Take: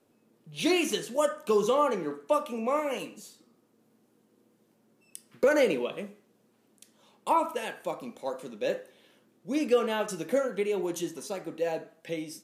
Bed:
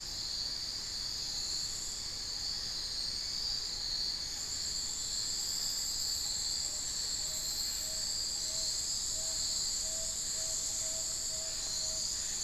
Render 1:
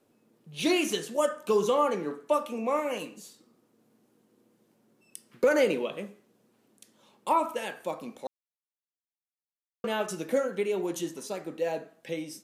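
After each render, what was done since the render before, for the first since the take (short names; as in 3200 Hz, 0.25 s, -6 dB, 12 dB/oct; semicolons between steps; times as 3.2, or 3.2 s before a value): 8.27–9.84 mute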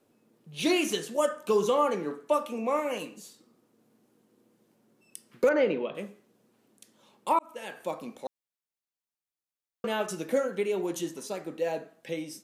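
5.49–5.95 air absorption 270 m; 7.39–7.84 fade in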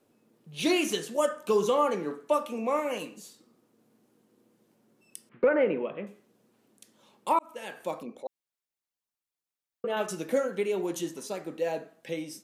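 5.29–6.07 LPF 2600 Hz 24 dB/oct; 8.03–9.97 formant sharpening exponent 1.5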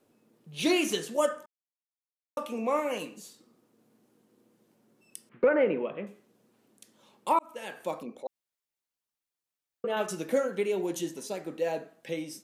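1.46–2.37 mute; 10.74–11.44 bell 1200 Hz -7.5 dB 0.37 oct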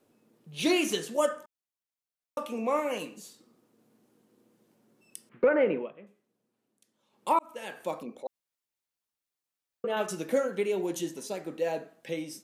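5.75–7.28 dip -13 dB, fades 0.18 s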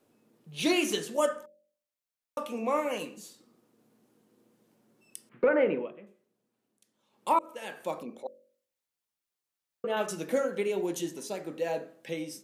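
de-hum 45.78 Hz, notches 13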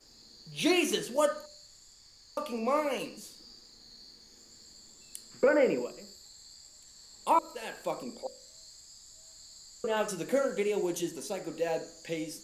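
add bed -17.5 dB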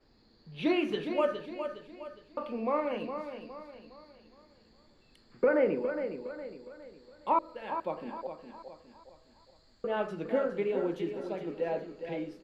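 air absorption 410 m; feedback echo 0.412 s, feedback 41%, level -8.5 dB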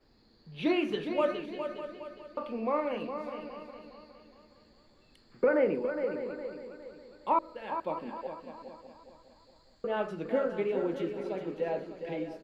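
echo 0.6 s -13 dB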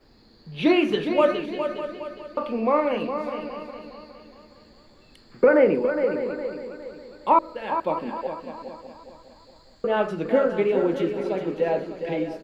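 gain +9 dB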